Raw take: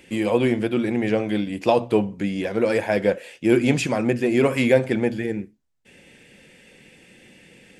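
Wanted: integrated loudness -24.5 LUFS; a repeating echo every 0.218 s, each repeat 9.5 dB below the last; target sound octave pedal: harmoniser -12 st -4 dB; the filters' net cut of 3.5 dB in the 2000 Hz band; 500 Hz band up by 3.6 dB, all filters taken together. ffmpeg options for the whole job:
-filter_complex "[0:a]equalizer=f=500:t=o:g=4.5,equalizer=f=2k:t=o:g=-4.5,aecho=1:1:218|436|654|872:0.335|0.111|0.0365|0.012,asplit=2[a][b];[b]asetrate=22050,aresample=44100,atempo=2,volume=-4dB[c];[a][c]amix=inputs=2:normalize=0,volume=-7dB"

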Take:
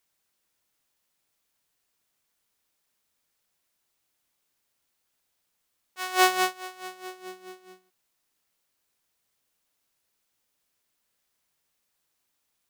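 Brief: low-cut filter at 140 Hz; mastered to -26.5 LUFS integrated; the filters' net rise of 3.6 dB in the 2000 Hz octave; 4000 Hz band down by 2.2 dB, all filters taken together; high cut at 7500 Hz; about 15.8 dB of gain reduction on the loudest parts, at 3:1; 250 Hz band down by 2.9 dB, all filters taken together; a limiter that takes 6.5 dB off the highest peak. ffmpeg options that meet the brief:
-af "highpass=140,lowpass=7.5k,equalizer=f=250:t=o:g=-6.5,equalizer=f=2k:t=o:g=6,equalizer=f=4k:t=o:g=-5,acompressor=threshold=-35dB:ratio=3,volume=15.5dB,alimiter=limit=-10.5dB:level=0:latency=1"

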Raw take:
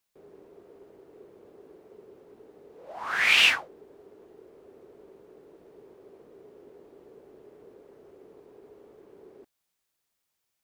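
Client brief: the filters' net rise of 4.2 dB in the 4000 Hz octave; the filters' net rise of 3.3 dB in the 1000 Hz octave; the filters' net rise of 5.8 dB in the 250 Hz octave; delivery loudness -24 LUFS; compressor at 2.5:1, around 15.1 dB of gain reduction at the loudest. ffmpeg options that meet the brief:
-af "equalizer=f=250:t=o:g=8,equalizer=f=1k:t=o:g=3.5,equalizer=f=4k:t=o:g=6,acompressor=threshold=-36dB:ratio=2.5,volume=17dB"

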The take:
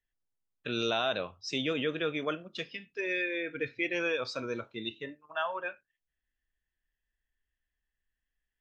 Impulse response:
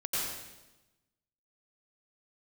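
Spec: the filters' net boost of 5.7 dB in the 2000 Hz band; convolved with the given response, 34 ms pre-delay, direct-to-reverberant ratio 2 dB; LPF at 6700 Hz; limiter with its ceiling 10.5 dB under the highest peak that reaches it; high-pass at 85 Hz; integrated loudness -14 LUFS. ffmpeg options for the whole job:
-filter_complex "[0:a]highpass=85,lowpass=6.7k,equalizer=f=2k:t=o:g=7.5,alimiter=limit=-23dB:level=0:latency=1,asplit=2[a][b];[1:a]atrim=start_sample=2205,adelay=34[c];[b][c]afir=irnorm=-1:irlink=0,volume=-8.5dB[d];[a][d]amix=inputs=2:normalize=0,volume=18dB"

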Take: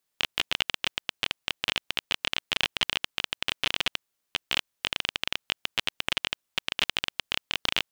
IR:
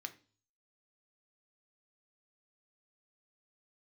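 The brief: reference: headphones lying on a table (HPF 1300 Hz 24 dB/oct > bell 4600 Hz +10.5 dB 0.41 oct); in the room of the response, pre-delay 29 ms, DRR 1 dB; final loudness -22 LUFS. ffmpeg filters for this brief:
-filter_complex "[0:a]asplit=2[a][b];[1:a]atrim=start_sample=2205,adelay=29[c];[b][c]afir=irnorm=-1:irlink=0,volume=1.5dB[d];[a][d]amix=inputs=2:normalize=0,highpass=f=1.3k:w=0.5412,highpass=f=1.3k:w=1.3066,equalizer=f=4.6k:t=o:w=0.41:g=10.5,volume=3dB"

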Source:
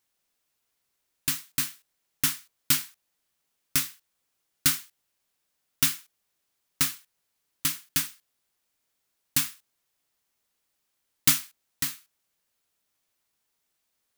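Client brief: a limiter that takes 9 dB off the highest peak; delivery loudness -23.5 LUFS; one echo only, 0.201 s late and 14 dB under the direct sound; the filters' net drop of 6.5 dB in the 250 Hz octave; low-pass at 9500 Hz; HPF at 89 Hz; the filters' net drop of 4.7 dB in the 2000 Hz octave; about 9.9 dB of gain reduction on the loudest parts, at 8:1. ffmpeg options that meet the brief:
-af "highpass=89,lowpass=9.5k,equalizer=f=250:t=o:g=-8,equalizer=f=2k:t=o:g=-6,acompressor=threshold=-31dB:ratio=8,alimiter=limit=-22.5dB:level=0:latency=1,aecho=1:1:201:0.2,volume=19dB"

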